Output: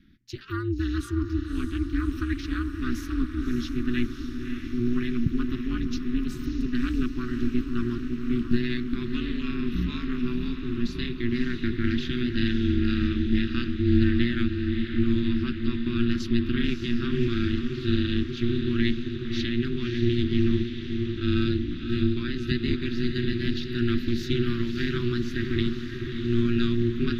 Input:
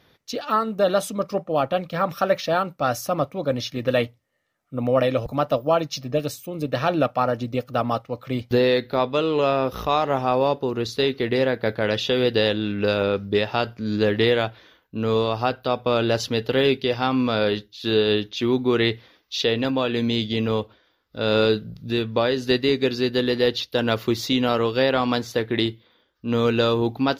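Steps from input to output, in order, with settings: elliptic band-stop 210–1600 Hz, stop band 40 dB; tilt EQ -3.5 dB/octave; echo that smears into a reverb 588 ms, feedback 68%, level -7 dB; ring modulator 120 Hz

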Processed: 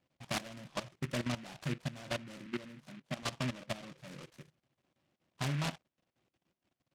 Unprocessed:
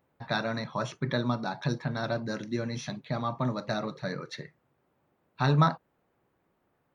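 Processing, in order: steep low-pass 1.8 kHz 72 dB/octave; comb of notches 440 Hz; level held to a coarse grid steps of 15 dB; 2.46–3.23 s: high-pass 140 Hz 24 dB/octave; delay time shaken by noise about 1.9 kHz, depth 0.18 ms; trim -3.5 dB

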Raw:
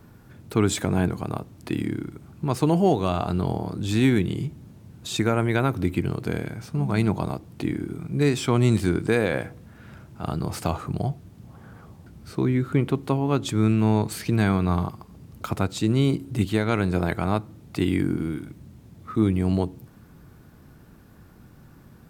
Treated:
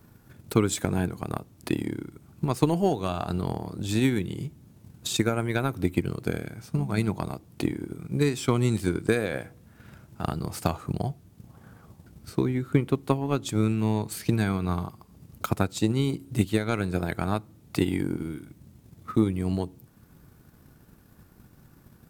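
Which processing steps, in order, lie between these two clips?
treble shelf 6 kHz +8 dB; transient shaper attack +8 dB, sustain -2 dB; trim -6 dB

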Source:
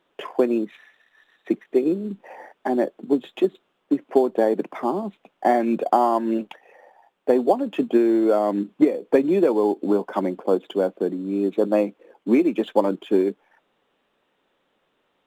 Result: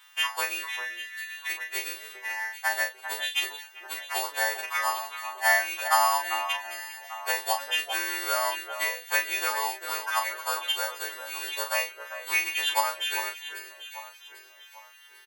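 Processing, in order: partials quantised in pitch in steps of 2 st; high-pass 1.1 kHz 24 dB/octave; treble shelf 4.2 kHz +7 dB; in parallel at +1 dB: compression, threshold -44 dBFS, peak gain reduction 20.5 dB; on the sum: doubling 34 ms -6 dB; echo whose repeats swap between lows and highs 397 ms, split 2 kHz, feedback 62%, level -9 dB; trim +4 dB

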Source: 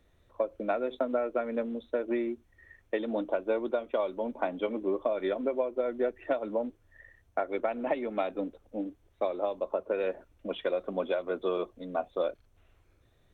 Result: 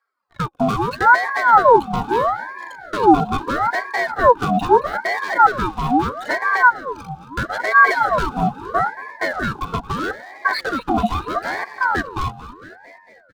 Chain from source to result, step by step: reverb removal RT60 1.4 s; waveshaping leveller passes 5; Butterworth band-stop 1.4 kHz, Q 2.4; static phaser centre 370 Hz, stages 6; small resonant body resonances 240/920/1300/3000 Hz, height 15 dB; frequency-shifting echo 225 ms, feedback 63%, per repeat +33 Hz, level -15.5 dB; ring modulator with a swept carrier 920 Hz, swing 50%, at 0.77 Hz; trim +1.5 dB

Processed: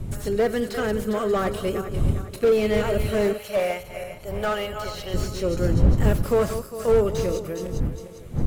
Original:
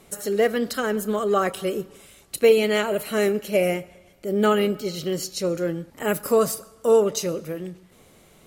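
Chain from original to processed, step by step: backward echo that repeats 202 ms, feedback 64%, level -11 dB; wind noise 110 Hz -25 dBFS; 3.33–5.14 s: resonant low shelf 450 Hz -11.5 dB, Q 1.5; slew-rate limiter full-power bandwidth 95 Hz; trim -1 dB

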